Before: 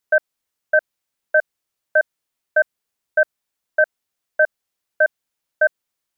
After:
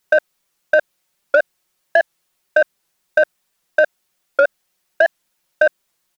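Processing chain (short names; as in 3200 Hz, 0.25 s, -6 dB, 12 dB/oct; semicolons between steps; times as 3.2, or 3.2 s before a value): comb 5.5 ms, depth 65%; in parallel at -2.5 dB: soft clip -20 dBFS, distortion -10 dB; on the sum: record warp 78 rpm, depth 160 cents; gain +4 dB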